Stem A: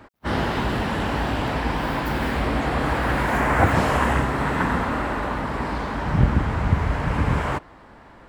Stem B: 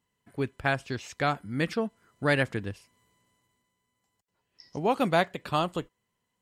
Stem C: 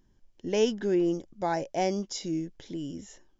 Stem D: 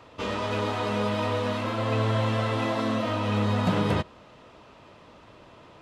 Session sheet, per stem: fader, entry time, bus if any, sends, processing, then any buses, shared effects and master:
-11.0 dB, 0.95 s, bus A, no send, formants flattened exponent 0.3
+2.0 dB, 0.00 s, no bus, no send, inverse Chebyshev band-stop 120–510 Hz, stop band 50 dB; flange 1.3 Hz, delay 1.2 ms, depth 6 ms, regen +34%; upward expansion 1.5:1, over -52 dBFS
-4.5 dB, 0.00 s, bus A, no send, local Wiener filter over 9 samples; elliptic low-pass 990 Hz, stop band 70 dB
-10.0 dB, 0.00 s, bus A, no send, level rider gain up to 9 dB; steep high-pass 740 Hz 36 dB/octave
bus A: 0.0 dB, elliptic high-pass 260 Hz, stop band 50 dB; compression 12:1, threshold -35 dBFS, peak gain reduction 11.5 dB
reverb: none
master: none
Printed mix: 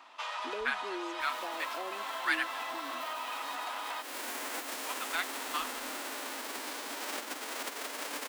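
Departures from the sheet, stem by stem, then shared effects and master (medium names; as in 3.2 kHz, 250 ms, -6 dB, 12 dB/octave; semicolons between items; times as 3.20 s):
stem C -4.5 dB -> +1.5 dB; stem D -10.0 dB -> -0.5 dB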